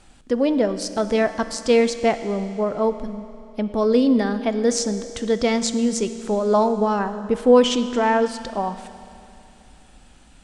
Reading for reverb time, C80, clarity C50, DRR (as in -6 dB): 2.8 s, 12.0 dB, 11.5 dB, 10.5 dB